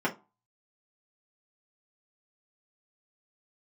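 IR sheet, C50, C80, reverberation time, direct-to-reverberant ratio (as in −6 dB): 16.0 dB, 24.0 dB, 0.30 s, −5.5 dB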